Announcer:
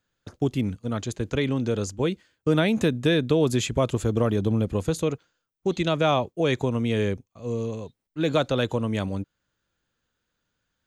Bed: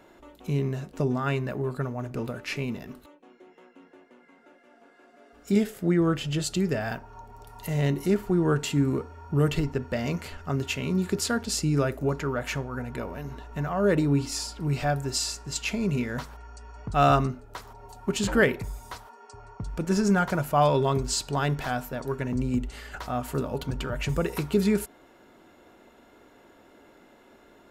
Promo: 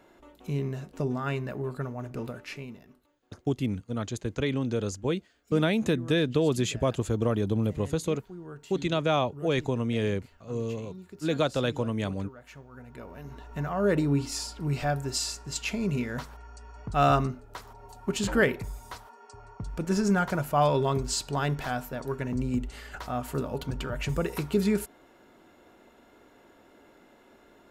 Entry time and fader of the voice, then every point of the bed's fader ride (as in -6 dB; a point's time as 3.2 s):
3.05 s, -3.5 dB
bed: 2.29 s -3.5 dB
3.17 s -19.5 dB
12.42 s -19.5 dB
13.5 s -2 dB